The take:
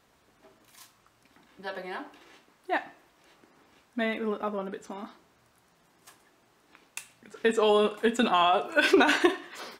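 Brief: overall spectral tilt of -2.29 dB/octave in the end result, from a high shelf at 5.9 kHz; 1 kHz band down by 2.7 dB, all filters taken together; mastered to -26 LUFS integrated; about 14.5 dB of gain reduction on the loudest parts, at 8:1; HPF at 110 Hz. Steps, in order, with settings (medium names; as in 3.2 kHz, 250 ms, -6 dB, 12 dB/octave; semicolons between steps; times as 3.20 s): high-pass 110 Hz; peaking EQ 1 kHz -3.5 dB; treble shelf 5.9 kHz -6 dB; compression 8:1, threshold -32 dBFS; trim +12.5 dB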